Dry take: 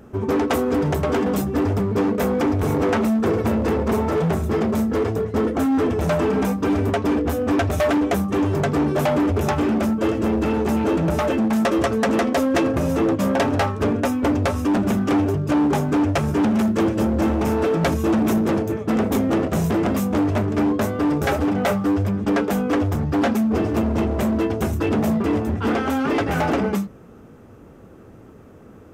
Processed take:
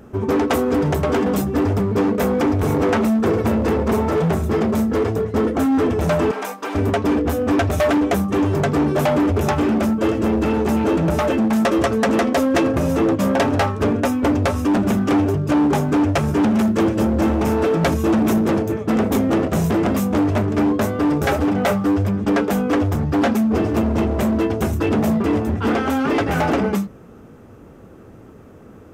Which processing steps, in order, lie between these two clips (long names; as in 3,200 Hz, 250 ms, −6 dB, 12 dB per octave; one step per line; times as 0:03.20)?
0:06.31–0:06.75: high-pass filter 660 Hz 12 dB per octave
level +2 dB